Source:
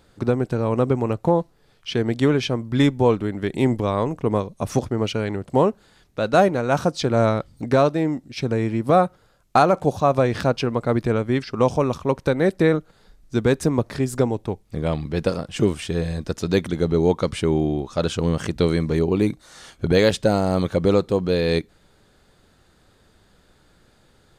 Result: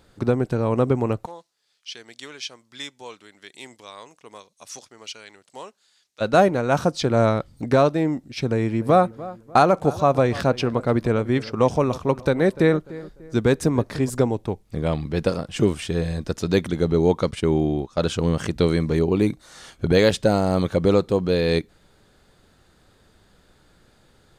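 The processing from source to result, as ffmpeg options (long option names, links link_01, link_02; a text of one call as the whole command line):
ffmpeg -i in.wav -filter_complex "[0:a]asplit=3[link_01][link_02][link_03];[link_01]afade=type=out:start_time=1.25:duration=0.02[link_04];[link_02]bandpass=frequency=6000:width_type=q:width=0.98,afade=type=in:start_time=1.25:duration=0.02,afade=type=out:start_time=6.2:duration=0.02[link_05];[link_03]afade=type=in:start_time=6.2:duration=0.02[link_06];[link_04][link_05][link_06]amix=inputs=3:normalize=0,asettb=1/sr,asplit=3[link_07][link_08][link_09];[link_07]atrim=end=8.514[link_10];[link_08]atrim=start=8.51:end=14.1,asetpts=PTS-STARTPTS,afade=type=in:duration=0.004:curve=qsin,afade=type=out:start_time=5.586:duration=0.004:curve=qsin,asplit=2[link_11][link_12];[link_12]adelay=296,lowpass=frequency=2000:poles=1,volume=-17.5dB,asplit=2[link_13][link_14];[link_14]adelay=296,lowpass=frequency=2000:poles=1,volume=0.37,asplit=2[link_15][link_16];[link_16]adelay=296,lowpass=frequency=2000:poles=1,volume=0.37[link_17];[link_11][link_13][link_15][link_17]amix=inputs=4:normalize=0,atrim=end_sample=246519[link_18];[link_09]atrim=start=14.096[link_19];[link_10][link_18]acrossfade=duration=0.004:curve1=hsin:curve2=qsin[link_20];[link_20][link_19]acrossfade=duration=0.004:curve1=qsin:curve2=hsin,asettb=1/sr,asplit=3[link_21][link_22][link_23];[link_21]atrim=end=17.314[link_24];[link_22]atrim=start=17.31:end=18.02,asetpts=PTS-STARTPTS,afade=type=in:duration=0.004:curve=qsin,afade=type=out:start_time=0.706:duration=0.004:curve=qsin,agate=range=-11dB:threshold=-31dB:ratio=16:release=100:detection=peak[link_25];[link_23]atrim=start=18.016[link_26];[link_24][link_25]acrossfade=duration=0.004:curve1=hsin:curve2=qsin[link_27];[link_27][link_26]acrossfade=duration=0.004:curve1=qsin:curve2=hsin" out.wav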